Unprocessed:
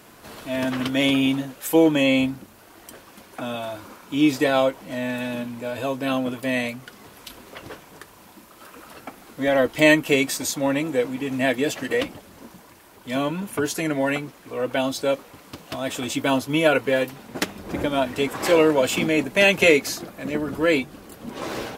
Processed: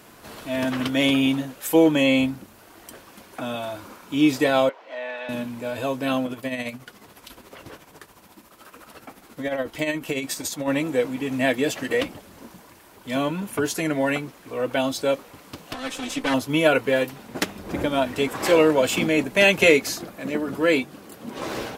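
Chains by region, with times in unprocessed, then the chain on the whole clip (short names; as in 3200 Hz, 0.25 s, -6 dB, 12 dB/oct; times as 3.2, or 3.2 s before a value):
4.69–5.29 HPF 470 Hz 24 dB/oct + air absorption 220 m
6.25–10.68 compressor 2.5:1, threshold -22 dBFS + tremolo 14 Hz, depth 57%
15.73–16.34 minimum comb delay 3.9 ms + LPF 9900 Hz + low shelf 200 Hz -5 dB
20.16–21.37 HPF 110 Hz + notches 50/100/150 Hz
whole clip: dry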